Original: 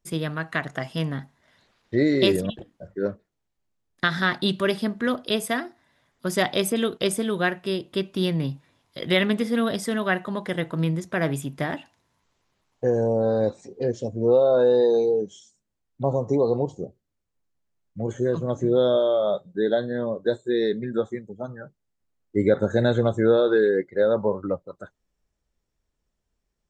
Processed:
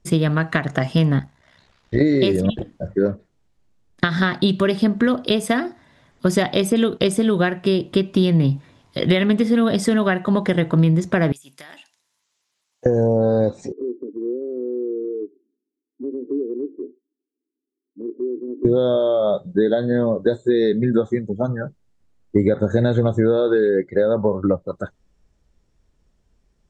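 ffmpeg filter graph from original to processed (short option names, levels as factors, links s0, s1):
-filter_complex "[0:a]asettb=1/sr,asplit=3[s0][s1][s2];[s0]atrim=end=1.194[s3];[s1]atrim=start=1.19:end=2.01,asetpts=PTS-STARTPTS,afade=t=in:d=0.004:c=qsin,afade=t=out:st=0.816:d=0.004:c=qsin,equalizer=f=280:t=o:w=2.1:g=-6.5,tremolo=f=65:d=0.75[s4];[s2]atrim=start=2.006[s5];[s3][s4]acrossfade=d=0.004:c1=hsin:c2=qsin[s6];[s6][s5]acrossfade=d=0.004:c1=qsin:c2=hsin,asettb=1/sr,asplit=3[s7][s8][s9];[s7]atrim=end=11.324[s10];[s8]atrim=start=11.32:end=12.86,asetpts=PTS-STARTPTS,afade=t=in:d=0.004:c=qsin,afade=t=out:st=1.536:d=0.004:c=qsin,aderivative,acompressor=threshold=0.00562:ratio=16:attack=3.2:release=140:knee=1:detection=peak[s11];[s9]atrim=start=12.856[s12];[s10][s11]acrossfade=d=0.004:c1=hsin:c2=qsin[s13];[s13][s12]acrossfade=d=0.004:c1=qsin:c2=hsin,asettb=1/sr,asplit=3[s14][s15][s16];[s14]atrim=end=13.724[s17];[s15]atrim=start=13.72:end=18.65,asetpts=PTS-STARTPTS,afade=t=in:d=0.004:c=qsin,afade=t=out:st=4.926:d=0.004:c=qsin,asuperpass=centerf=330:order=8:qfactor=2,acompressor=threshold=0.00631:ratio=2:attack=3.2:release=140:knee=1:detection=peak[s18];[s16]atrim=start=18.646[s19];[s17][s18]acrossfade=d=0.004:c1=hsin:c2=qsin[s20];[s20][s19]acrossfade=d=0.004:c1=qsin:c2=hsin,acompressor=threshold=0.0447:ratio=6,lowpass=9100,lowshelf=f=420:g=7,volume=2.82"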